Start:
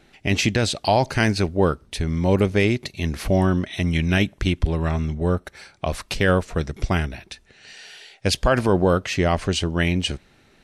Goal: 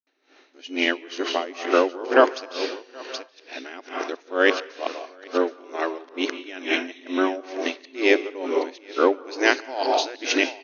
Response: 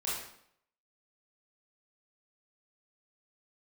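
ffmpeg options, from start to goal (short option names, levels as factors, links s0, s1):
-filter_complex "[0:a]areverse,bandreject=f=419.7:t=h:w=4,bandreject=f=839.4:t=h:w=4,bandreject=f=1259.1:t=h:w=4,bandreject=f=1678.8:t=h:w=4,bandreject=f=2098.5:t=h:w=4,bandreject=f=2518.2:t=h:w=4,bandreject=f=2937.9:t=h:w=4,bandreject=f=3357.6:t=h:w=4,bandreject=f=3777.3:t=h:w=4,bandreject=f=4197:t=h:w=4,bandreject=f=4616.7:t=h:w=4,bandreject=f=5036.4:t=h:w=4,bandreject=f=5456.1:t=h:w=4,bandreject=f=5875.8:t=h:w=4,bandreject=f=6295.5:t=h:w=4,bandreject=f=6715.2:t=h:w=4,bandreject=f=7134.9:t=h:w=4,bandreject=f=7554.6:t=h:w=4,bandreject=f=7974.3:t=h:w=4,bandreject=f=8394:t=h:w=4,bandreject=f=8813.7:t=h:w=4,bandreject=f=9233.4:t=h:w=4,bandreject=f=9653.1:t=h:w=4,bandreject=f=10072.8:t=h:w=4,bandreject=f=10492.5:t=h:w=4,bandreject=f=10912.2:t=h:w=4,bandreject=f=11331.9:t=h:w=4,asplit=2[s0][s1];[1:a]atrim=start_sample=2205,lowpass=5500,adelay=146[s2];[s1][s2]afir=irnorm=-1:irlink=0,volume=0.316[s3];[s0][s3]amix=inputs=2:normalize=0,afftfilt=real='re*between(b*sr/4096,250,6700)':imag='im*between(b*sr/4096,250,6700)':win_size=4096:overlap=0.75,asplit=2[s4][s5];[s5]aecho=0:1:775:0.211[s6];[s4][s6]amix=inputs=2:normalize=0,aeval=exprs='val(0)*pow(10,-20*(0.5-0.5*cos(2*PI*2.2*n/s))/20)':c=same,volume=1.58"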